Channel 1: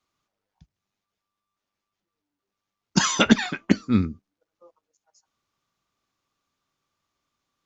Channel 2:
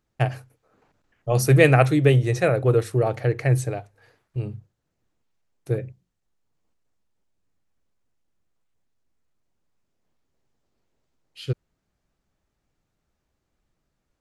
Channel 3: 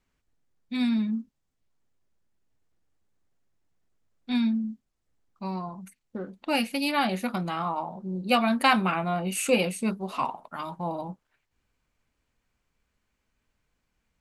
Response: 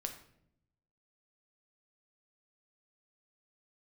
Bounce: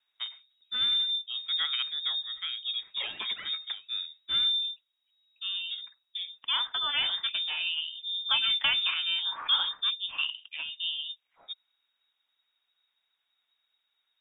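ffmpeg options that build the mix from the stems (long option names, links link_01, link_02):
-filter_complex "[0:a]alimiter=limit=-11.5dB:level=0:latency=1:release=23,volume=-1.5dB[link_01];[1:a]volume=-15.5dB[link_02];[2:a]lowpass=frequency=4400:width=0.5412,lowpass=frequency=4400:width=1.3066,volume=-2dB,asplit=2[link_03][link_04];[link_04]apad=whole_len=337697[link_05];[link_01][link_05]sidechaingate=range=-12dB:threshold=-50dB:ratio=16:detection=peak[link_06];[link_06][link_02][link_03]amix=inputs=3:normalize=0,lowpass=frequency=3200:width_type=q:width=0.5098,lowpass=frequency=3200:width_type=q:width=0.6013,lowpass=frequency=3200:width_type=q:width=0.9,lowpass=frequency=3200:width_type=q:width=2.563,afreqshift=-3800,acrossover=split=480|3000[link_07][link_08][link_09];[link_08]acompressor=threshold=-30dB:ratio=6[link_10];[link_07][link_10][link_09]amix=inputs=3:normalize=0"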